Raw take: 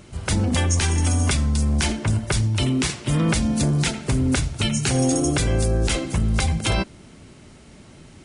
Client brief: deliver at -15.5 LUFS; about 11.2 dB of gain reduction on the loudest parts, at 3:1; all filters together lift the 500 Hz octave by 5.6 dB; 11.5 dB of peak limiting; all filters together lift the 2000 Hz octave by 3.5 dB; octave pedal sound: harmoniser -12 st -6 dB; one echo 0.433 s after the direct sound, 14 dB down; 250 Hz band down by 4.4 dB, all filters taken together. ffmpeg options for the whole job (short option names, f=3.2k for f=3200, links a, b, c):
-filter_complex "[0:a]equalizer=f=250:t=o:g=-8.5,equalizer=f=500:t=o:g=9,equalizer=f=2k:t=o:g=4,acompressor=threshold=-31dB:ratio=3,alimiter=level_in=0.5dB:limit=-24dB:level=0:latency=1,volume=-0.5dB,aecho=1:1:433:0.2,asplit=2[a][b];[b]asetrate=22050,aresample=44100,atempo=2,volume=-6dB[c];[a][c]amix=inputs=2:normalize=0,volume=17.5dB"